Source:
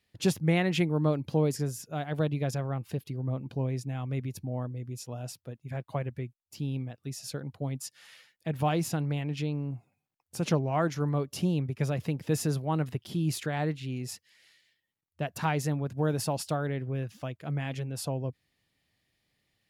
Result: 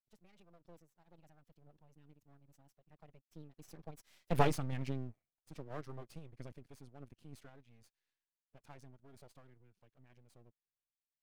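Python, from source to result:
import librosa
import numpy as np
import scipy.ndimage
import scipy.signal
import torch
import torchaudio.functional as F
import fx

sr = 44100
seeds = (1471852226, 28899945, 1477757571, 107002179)

p1 = fx.doppler_pass(x, sr, speed_mps=37, closest_m=4.3, pass_at_s=7.68)
p2 = fx.rider(p1, sr, range_db=4, speed_s=0.5)
p3 = p1 + F.gain(torch.from_numpy(p2), 1.5).numpy()
p4 = fx.tremolo_random(p3, sr, seeds[0], hz=3.5, depth_pct=55)
p5 = fx.stretch_vocoder(p4, sr, factor=0.57)
p6 = np.maximum(p5, 0.0)
y = F.gain(torch.from_numpy(p6), 4.0).numpy()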